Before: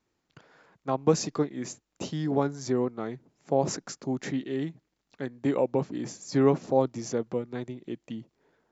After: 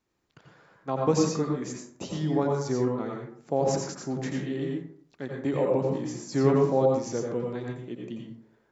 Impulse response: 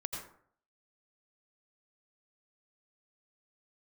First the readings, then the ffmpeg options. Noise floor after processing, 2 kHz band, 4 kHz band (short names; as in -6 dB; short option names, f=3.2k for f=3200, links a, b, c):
-68 dBFS, +0.5 dB, 0.0 dB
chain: -filter_complex "[1:a]atrim=start_sample=2205[a];[0:a][a]afir=irnorm=-1:irlink=0"